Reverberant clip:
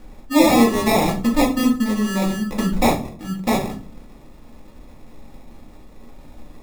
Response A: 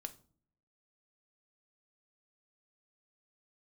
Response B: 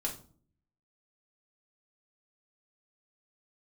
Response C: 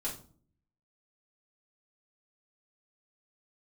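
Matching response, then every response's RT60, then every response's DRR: B; no single decay rate, 0.45 s, 0.45 s; 8.0 dB, -1.5 dB, -6.5 dB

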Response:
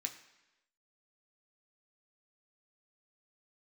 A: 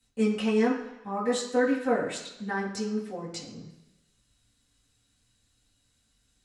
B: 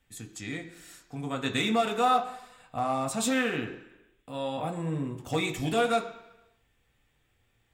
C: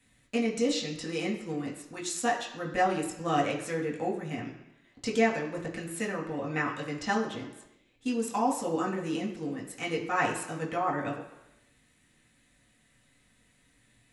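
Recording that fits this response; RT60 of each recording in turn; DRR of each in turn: B; 1.0 s, 1.0 s, 1.0 s; -9.0 dB, 3.0 dB, -3.5 dB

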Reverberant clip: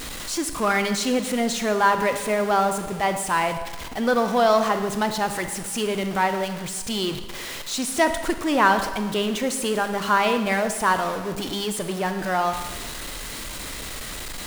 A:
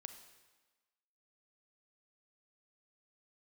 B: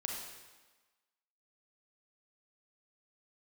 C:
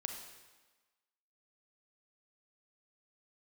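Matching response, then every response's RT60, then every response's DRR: A; 1.3 s, 1.3 s, 1.3 s; 7.5 dB, -0.5 dB, 3.5 dB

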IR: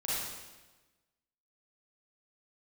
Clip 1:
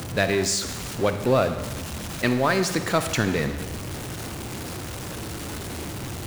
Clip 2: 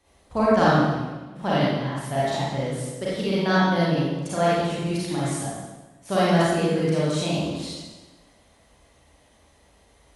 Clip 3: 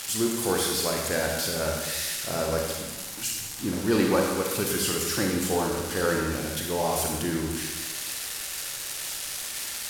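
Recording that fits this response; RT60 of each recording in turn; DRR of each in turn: 2; 1.2 s, 1.2 s, 1.2 s; 8.5 dB, -9.0 dB, 0.0 dB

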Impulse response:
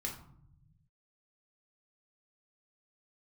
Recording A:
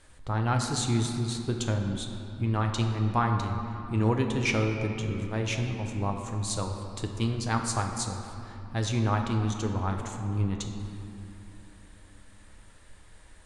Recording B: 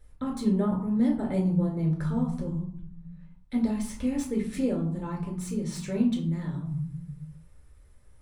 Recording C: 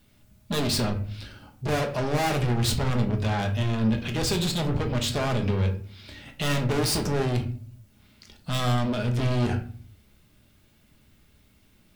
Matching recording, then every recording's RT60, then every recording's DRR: B; 2.8 s, 0.65 s, 0.50 s; 3.0 dB, -1.0 dB, 3.5 dB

